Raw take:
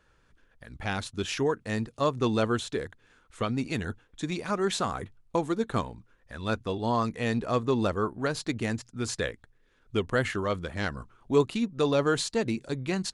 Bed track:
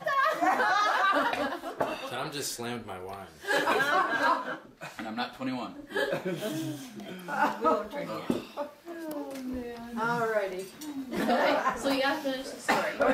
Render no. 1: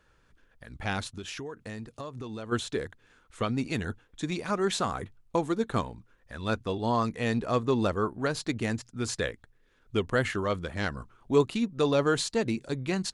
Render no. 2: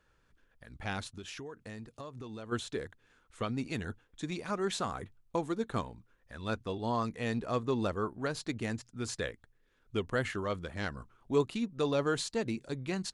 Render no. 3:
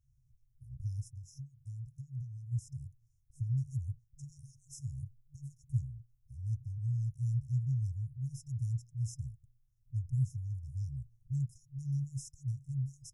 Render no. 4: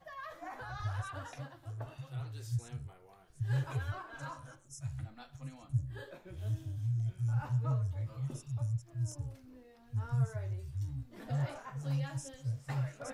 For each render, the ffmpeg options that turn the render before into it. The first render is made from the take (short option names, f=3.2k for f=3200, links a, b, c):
-filter_complex "[0:a]asplit=3[a][b][c];[a]afade=t=out:st=1.12:d=0.02[d];[b]acompressor=threshold=-35dB:ratio=8:attack=3.2:release=140:knee=1:detection=peak,afade=t=in:st=1.12:d=0.02,afade=t=out:st=2.51:d=0.02[e];[c]afade=t=in:st=2.51:d=0.02[f];[d][e][f]amix=inputs=3:normalize=0"
-af "volume=-5.5dB"
-af "afftfilt=real='re*(1-between(b*sr/4096,140,5100))':imag='im*(1-between(b*sr/4096,140,5100))':win_size=4096:overlap=0.75,equalizer=f=125:t=o:w=1:g=8,equalizer=f=250:t=o:w=1:g=9,equalizer=f=500:t=o:w=1:g=-11,equalizer=f=1k:t=o:w=1:g=8,equalizer=f=2k:t=o:w=1:g=-8,equalizer=f=4k:t=o:w=1:g=-9,equalizer=f=8k:t=o:w=1:g=-6"
-filter_complex "[1:a]volume=-20dB[a];[0:a][a]amix=inputs=2:normalize=0"